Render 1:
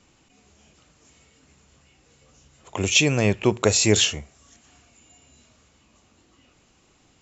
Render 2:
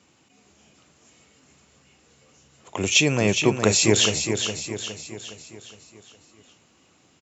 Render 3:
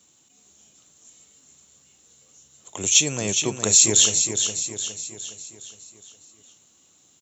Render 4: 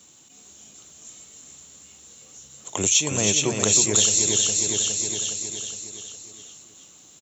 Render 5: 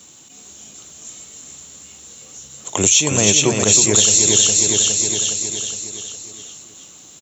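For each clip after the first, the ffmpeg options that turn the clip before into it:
-filter_complex "[0:a]highpass=110,asplit=2[a][b];[b]aecho=0:1:413|826|1239|1652|2065|2478:0.447|0.219|0.107|0.0526|0.0258|0.0126[c];[a][c]amix=inputs=2:normalize=0"
-af "equalizer=f=4.9k:w=4.1:g=-11,aexciter=amount=7.3:drive=2.2:freq=3.5k,volume=-7dB"
-filter_complex "[0:a]acompressor=threshold=-28dB:ratio=2.5,asplit=2[a][b];[b]aecho=0:1:317:0.531[c];[a][c]amix=inputs=2:normalize=0,volume=7dB"
-af "alimiter=level_in=8.5dB:limit=-1dB:release=50:level=0:latency=1,volume=-1dB"

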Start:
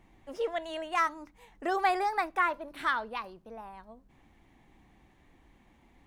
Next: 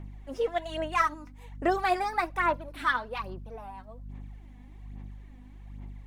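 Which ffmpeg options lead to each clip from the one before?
-af "aeval=exprs='val(0)+0.00447*(sin(2*PI*50*n/s)+sin(2*PI*2*50*n/s)/2+sin(2*PI*3*50*n/s)/3+sin(2*PI*4*50*n/s)/4+sin(2*PI*5*50*n/s)/5)':c=same,aphaser=in_gain=1:out_gain=1:delay=4.1:decay=0.56:speed=1.2:type=sinusoidal"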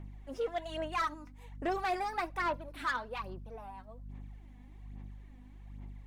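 -af "asoftclip=type=tanh:threshold=-22dB,volume=-4dB"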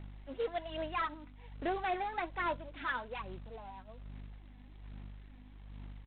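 -af "bandreject=f=1.2k:w=11,aresample=8000,acrusher=bits=4:mode=log:mix=0:aa=0.000001,aresample=44100,volume=-1.5dB"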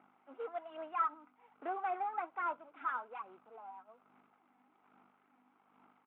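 -af "highpass=f=300:w=0.5412,highpass=f=300:w=1.3066,equalizer=f=350:t=q:w=4:g=-5,equalizer=f=550:t=q:w=4:g=-7,equalizer=f=800:t=q:w=4:g=5,equalizer=f=1.3k:t=q:w=4:g=10,equalizer=f=1.8k:t=q:w=4:g=-10,lowpass=f=2.2k:w=0.5412,lowpass=f=2.2k:w=1.3066,volume=-4dB"

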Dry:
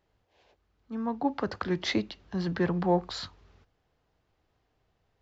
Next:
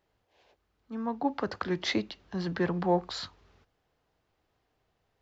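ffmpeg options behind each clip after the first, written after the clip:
-af "lowshelf=f=170:g=-5.5"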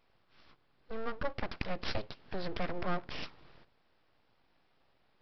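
-af "acompressor=threshold=-43dB:ratio=2,aresample=11025,aeval=exprs='abs(val(0))':c=same,aresample=44100,volume=6dB"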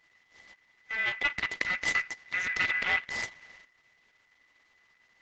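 -af "aeval=exprs='val(0)*sin(2*PI*2000*n/s)':c=same,volume=7.5dB" -ar 48000 -c:a libopus -b:a 10k

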